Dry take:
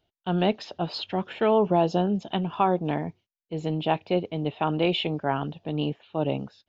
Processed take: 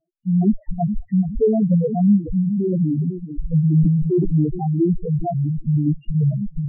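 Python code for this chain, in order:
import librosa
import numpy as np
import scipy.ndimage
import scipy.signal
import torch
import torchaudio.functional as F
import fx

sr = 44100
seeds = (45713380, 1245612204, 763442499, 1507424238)

p1 = fx.spec_ripple(x, sr, per_octave=1.2, drift_hz=-1.9, depth_db=21)
p2 = fx.recorder_agc(p1, sr, target_db=-9.5, rise_db_per_s=9.9, max_gain_db=30)
p3 = fx.small_body(p2, sr, hz=(730.0, 2000.0, 3900.0), ring_ms=40, db=fx.line((0.49, 12.0), (1.08, 16.0)), at=(0.49, 1.08), fade=0.02)
p4 = fx.env_lowpass_down(p3, sr, base_hz=720.0, full_db=-14.5)
p5 = fx.low_shelf(p4, sr, hz=420.0, db=9.0)
p6 = fx.echo_feedback(p5, sr, ms=421, feedback_pct=31, wet_db=-12.0)
p7 = fx.schmitt(p6, sr, flips_db=-24.0)
p8 = p6 + F.gain(torch.from_numpy(p7), -4.0).numpy()
p9 = fx.spec_topn(p8, sr, count=2)
p10 = fx.low_shelf(p9, sr, hz=65.0, db=11.0)
p11 = fx.sustainer(p10, sr, db_per_s=25.0, at=(3.76, 4.44), fade=0.02)
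y = F.gain(torch.from_numpy(p11), -4.5).numpy()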